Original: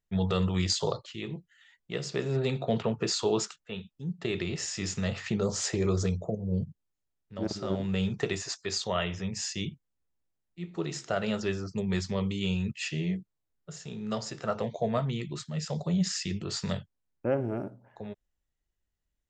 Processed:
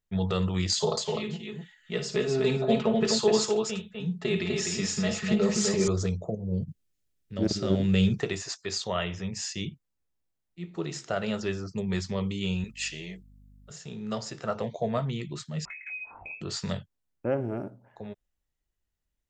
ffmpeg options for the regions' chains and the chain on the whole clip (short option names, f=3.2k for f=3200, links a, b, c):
-filter_complex "[0:a]asettb=1/sr,asplit=3[a][b][c];[a]atrim=end=0.724[d];[b]atrim=start=0.72:end=5.88,asetpts=PTS-STARTPTS,afade=t=in:d=0.004:c=qsin,afade=t=out:st=5.156:d=0.004:c=qsin,aecho=1:1:4.7:0.84,atrim=end_sample=227556,aecho=1:1:56|251:0.316|0.631,atrim=end_sample=227556[e];[c]atrim=start=5.876[f];[d][e]acrossfade=d=0.004:c1=hsin:c2=qsin[g];[g][f]acrossfade=d=0.004:c1=qsin:c2=hsin,asettb=1/sr,asplit=3[h][i][j];[h]atrim=end=6.684[k];[i]atrim=start=6.68:end=8.2,asetpts=PTS-STARTPTS,afade=t=in:d=0.004:c=qsin,afade=t=out:st=1.516:d=0.004:c=qsin,equalizer=f=940:t=o:w=1.2:g=-11,acontrast=86[l];[j]atrim=start=8.196[m];[k][l]acrossfade=d=0.004:c1=hsin:c2=qsin[n];[n][m]acrossfade=d=0.004:c1=qsin:c2=hsin,asettb=1/sr,asplit=3[o][p][q];[o]atrim=end=12.644[r];[p]atrim=start=12.64:end=13.71,asetpts=PTS-STARTPTS,afade=t=in:d=0.004:c=qsin,afade=t=out:st=1.066:d=0.004:c=qsin,highpass=f=690:p=1,highshelf=f=5.9k:g=9,aeval=exprs='val(0)+0.00224*(sin(2*PI*50*n/s)+sin(2*PI*2*50*n/s)/2+sin(2*PI*3*50*n/s)/3+sin(2*PI*4*50*n/s)/4+sin(2*PI*5*50*n/s)/5)':c=same[s];[q]atrim=start=13.706[t];[r][s]acrossfade=d=0.004:c1=hsin:c2=qsin[u];[u][t]acrossfade=d=0.004:c1=qsin:c2=hsin,asettb=1/sr,asplit=3[v][w][x];[v]atrim=end=15.654[y];[w]atrim=start=15.65:end=16.41,asetpts=PTS-STARTPTS,afade=t=in:d=0.004:c=qsin,afade=t=out:st=0.756:d=0.004:c=qsin,lowpass=f=2.3k:t=q:w=0.5098,lowpass=f=2.3k:t=q:w=0.6013,lowpass=f=2.3k:t=q:w=0.9,lowpass=f=2.3k:t=q:w=2.563,afreqshift=-2700,acompressor=threshold=-38dB:ratio=8:attack=3.2:release=140:knee=1:detection=peak,asplit=2[z][aa];[aa]adelay=21,volume=-5.5dB[ab];[z][ab]amix=inputs=2:normalize=0,atrim=end_sample=33516[ac];[x]atrim=start=16.406[ad];[y][ac]acrossfade=d=0.004:c1=hsin:c2=qsin[ae];[ae][ad]acrossfade=d=0.004:c1=qsin:c2=hsin"